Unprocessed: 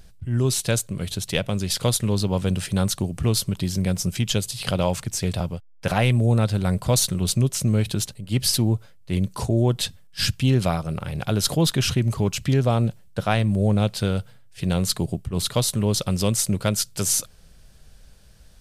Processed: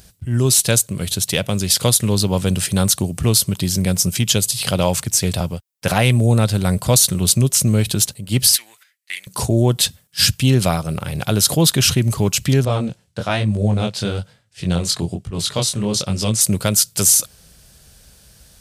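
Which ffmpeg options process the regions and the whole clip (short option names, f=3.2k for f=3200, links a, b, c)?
-filter_complex "[0:a]asettb=1/sr,asplit=3[a][b][c];[a]atrim=end=8.554[d];[b]atrim=start=8.55:end=9.27,asetpts=PTS-STARTPTS,afade=t=in:d=0.004:c=qsin,afade=t=out:st=0.716:d=0.004:c=qsin,agate=range=-13dB:threshold=-41dB:ratio=16:release=100:detection=peak,acompressor=threshold=-24dB:ratio=2:attack=3.2:release=140:knee=1:detection=peak,highpass=f=1.9k:t=q:w=4.4[e];[c]atrim=start=9.266[f];[d][e]acrossfade=d=0.004:c1=hsin:c2=qsin[g];[g][f]acrossfade=d=0.004:c1=qsin:c2=hsin,asettb=1/sr,asplit=3[h][i][j];[h]atrim=end=12.654[k];[i]atrim=start=12.65:end=16.41,asetpts=PTS-STARTPTS,afade=t=in:d=0.004:c=qsin,afade=t=out:st=3.756:d=0.004:c=qsin,lowpass=6.9k,flanger=delay=18.5:depth=6.5:speed=1.1[l];[j]atrim=start=16.406[m];[k][l]acrossfade=d=0.004:c1=hsin:c2=qsin[n];[n][m]acrossfade=d=0.004:c1=qsin:c2=hsin,highpass=53,highshelf=f=5.1k:g=10.5,alimiter=level_in=5.5dB:limit=-1dB:release=50:level=0:latency=1,volume=-1dB"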